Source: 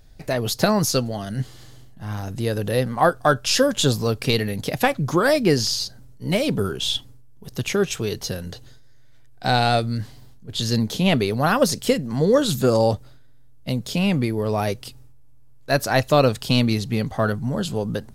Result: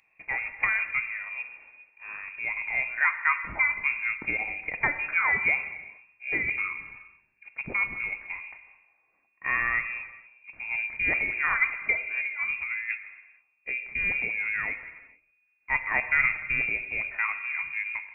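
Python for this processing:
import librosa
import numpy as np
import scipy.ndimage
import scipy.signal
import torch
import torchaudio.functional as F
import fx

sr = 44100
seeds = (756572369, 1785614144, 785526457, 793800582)

y = scipy.signal.sosfilt(scipy.signal.butter(2, 140.0, 'highpass', fs=sr, output='sos'), x)
y = fx.over_compress(y, sr, threshold_db=-21.0, ratio=-0.5, at=(12.1, 13.7), fade=0.02)
y = fx.freq_invert(y, sr, carrier_hz=2600)
y = fx.rev_gated(y, sr, seeds[0], gate_ms=490, shape='falling', drr_db=9.0)
y = y * librosa.db_to_amplitude(-7.0)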